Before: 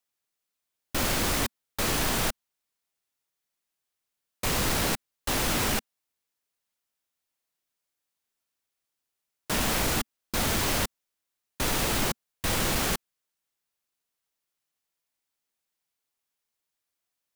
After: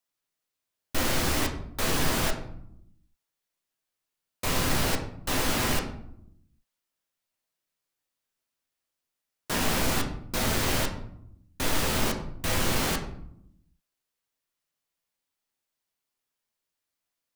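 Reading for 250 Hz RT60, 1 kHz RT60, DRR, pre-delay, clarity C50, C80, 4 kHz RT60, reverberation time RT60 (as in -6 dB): 1.2 s, 0.65 s, 2.0 dB, 8 ms, 9.0 dB, 11.5 dB, 0.40 s, 0.75 s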